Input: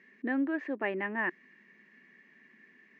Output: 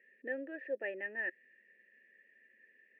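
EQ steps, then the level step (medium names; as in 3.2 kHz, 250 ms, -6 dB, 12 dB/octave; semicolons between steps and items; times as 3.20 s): vowel filter e; +3.0 dB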